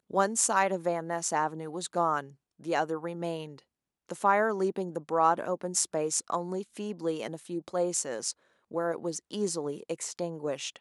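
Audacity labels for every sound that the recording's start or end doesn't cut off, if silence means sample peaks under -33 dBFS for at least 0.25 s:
2.670000	3.450000	sound
4.090000	8.310000	sound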